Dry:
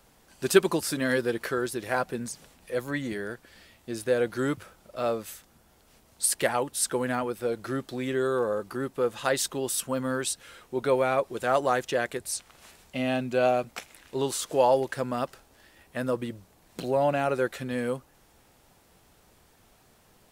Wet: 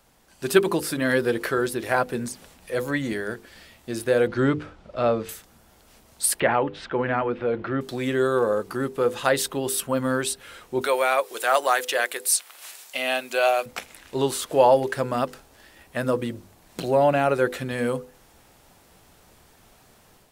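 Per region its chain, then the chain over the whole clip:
4.27–5.29 LPF 3900 Hz + low shelf 200 Hz +6.5 dB
6.4–7.81 LPF 2900 Hz 24 dB/oct + transient shaper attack -2 dB, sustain +4 dB
10.81–13.66 HPF 410 Hz + tilt +3 dB/oct
whole clip: notches 50/100/150/200/250/300/350/400/450/500 Hz; dynamic EQ 6400 Hz, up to -6 dB, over -46 dBFS, Q 1.2; AGC gain up to 5.5 dB

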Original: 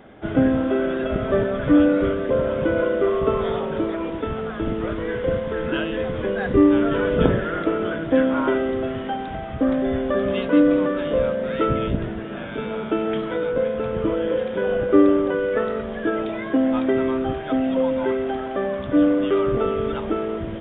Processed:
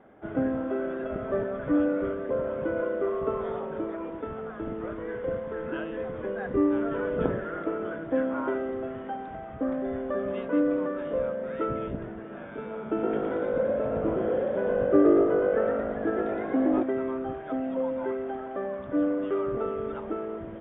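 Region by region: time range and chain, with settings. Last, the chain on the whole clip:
12.85–16.83 low shelf 260 Hz +7 dB + frequency-shifting echo 0.116 s, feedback 52%, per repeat +51 Hz, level -3 dB
whole clip: LPF 1600 Hz 12 dB/oct; low shelf 190 Hz -8.5 dB; gain -6.5 dB

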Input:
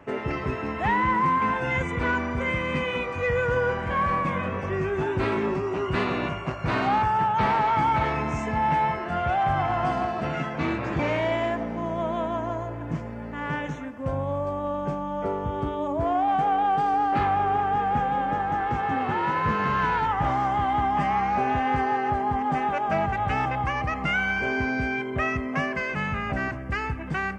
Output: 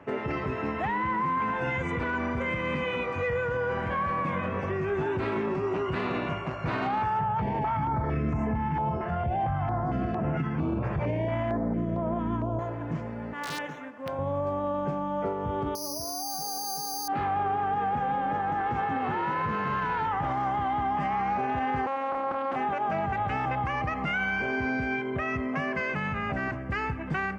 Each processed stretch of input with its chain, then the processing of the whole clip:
7.19–12.59 tilt -3 dB/oct + notch 3900 Hz, Q 6.7 + stepped notch 4.4 Hz 280–4100 Hz
13.33–14.19 median filter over 5 samples + HPF 570 Hz 6 dB/oct + wrapped overs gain 22.5 dB
15.75–17.08 LPF 1200 Hz + careless resampling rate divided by 8×, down none, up zero stuff
21.86–22.56 robotiser 270 Hz + Doppler distortion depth 1 ms
whole clip: HPF 72 Hz; high shelf 5800 Hz -10.5 dB; limiter -21 dBFS

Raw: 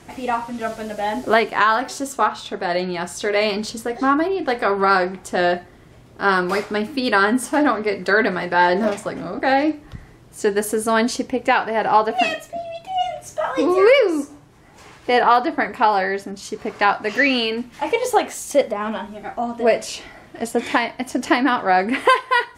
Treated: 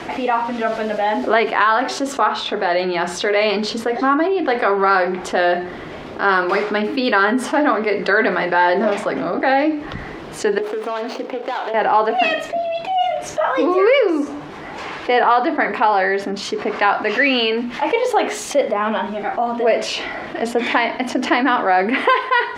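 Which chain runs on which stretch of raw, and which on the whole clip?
10.58–11.74 median filter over 25 samples + HPF 440 Hz + compressor 5:1, threshold -30 dBFS
whole clip: three-band isolator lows -12 dB, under 220 Hz, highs -20 dB, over 4500 Hz; notches 60/120/180/240/300/360/420 Hz; fast leveller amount 50%; gain -1.5 dB

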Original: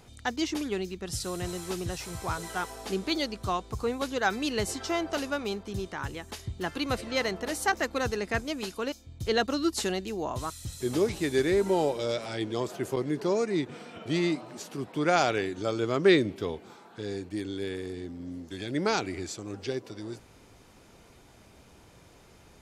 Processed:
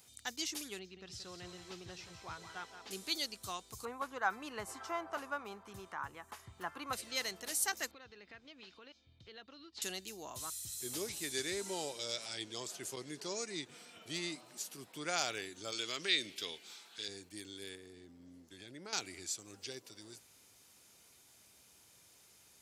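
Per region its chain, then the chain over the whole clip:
0.79–2.91 air absorption 200 m + echo 0.175 s -9.5 dB
3.85–6.93 EQ curve 440 Hz 0 dB, 1100 Hz +12 dB, 1600 Hz +3 dB, 4100 Hz -16 dB + mismatched tape noise reduction encoder only
7.91–9.82 LPF 3700 Hz 24 dB/oct + compressor 4:1, threshold -39 dBFS
11.3–13.68 LPF 7400 Hz + high shelf 4200 Hz +7 dB
15.72–17.08 compressor 3:1, threshold -24 dBFS + weighting filter D
17.75–18.93 high shelf 2800 Hz -10.5 dB + compressor 2:1, threshold -34 dBFS
whole clip: HPF 71 Hz; pre-emphasis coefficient 0.9; gain +2 dB

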